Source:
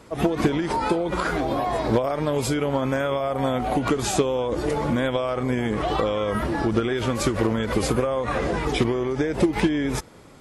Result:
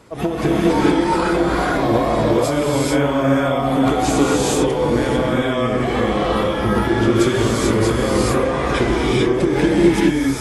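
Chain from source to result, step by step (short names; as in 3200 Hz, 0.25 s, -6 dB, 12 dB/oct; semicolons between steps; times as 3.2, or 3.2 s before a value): non-linear reverb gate 0.47 s rising, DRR -5 dB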